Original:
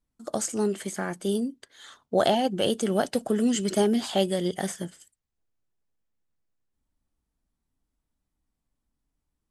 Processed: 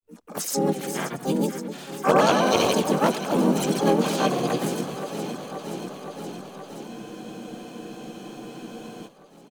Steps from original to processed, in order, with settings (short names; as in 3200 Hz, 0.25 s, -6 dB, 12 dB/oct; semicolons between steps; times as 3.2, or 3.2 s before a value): grains, pitch spread up and down by 0 st; echo with dull and thin repeats by turns 0.262 s, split 900 Hz, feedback 87%, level -10 dB; harmoniser -4 st -2 dB, +5 st -2 dB, +12 st -4 dB; spectral freeze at 6.9, 2.17 s